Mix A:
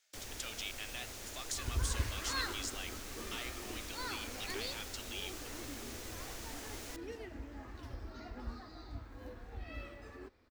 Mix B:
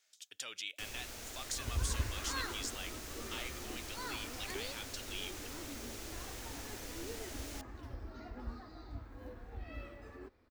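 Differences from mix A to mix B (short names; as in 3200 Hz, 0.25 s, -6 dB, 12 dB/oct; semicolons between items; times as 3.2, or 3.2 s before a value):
first sound: entry +0.65 s; second sound: add bell 5500 Hz -5 dB 2.7 oct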